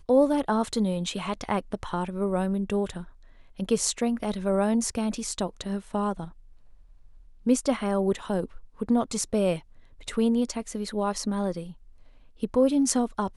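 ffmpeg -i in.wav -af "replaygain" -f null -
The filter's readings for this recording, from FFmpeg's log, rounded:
track_gain = +7.1 dB
track_peak = 0.325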